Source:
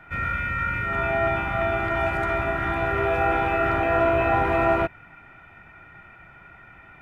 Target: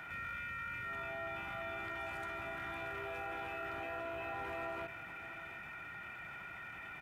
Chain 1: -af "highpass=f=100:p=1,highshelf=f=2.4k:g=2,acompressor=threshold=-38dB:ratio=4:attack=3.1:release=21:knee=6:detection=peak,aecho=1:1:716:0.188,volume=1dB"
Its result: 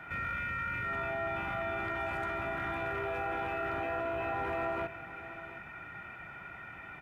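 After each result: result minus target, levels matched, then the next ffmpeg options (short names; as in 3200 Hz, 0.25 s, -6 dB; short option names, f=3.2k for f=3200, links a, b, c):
compressor: peak gain reduction -9 dB; 4000 Hz band -4.0 dB
-af "highpass=f=100:p=1,highshelf=f=2.4k:g=2,acompressor=threshold=-48.5dB:ratio=4:attack=3.1:release=21:knee=6:detection=peak,aecho=1:1:716:0.188,volume=1dB"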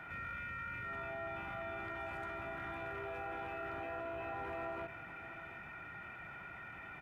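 4000 Hz band -4.0 dB
-af "highpass=f=100:p=1,highshelf=f=2.4k:g=13,acompressor=threshold=-48.5dB:ratio=4:attack=3.1:release=21:knee=6:detection=peak,aecho=1:1:716:0.188,volume=1dB"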